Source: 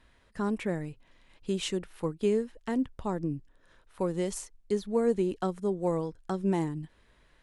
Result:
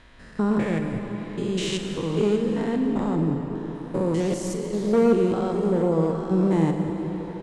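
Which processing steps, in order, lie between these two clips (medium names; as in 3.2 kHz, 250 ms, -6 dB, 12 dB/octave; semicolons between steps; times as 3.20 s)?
spectrogram pixelated in time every 200 ms; low-pass 7.6 kHz 12 dB/octave; in parallel at -1.5 dB: compression, threshold -41 dBFS, peak gain reduction 17 dB; on the sum: one-sided clip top -27 dBFS, bottom -19.5 dBFS; doubling 43 ms -12 dB; on a send at -4.5 dB: reverberation RT60 5.0 s, pre-delay 84 ms; 4.20–4.93 s: on the sum: loudspeaker Doppler distortion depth 0.18 ms; trim +7.5 dB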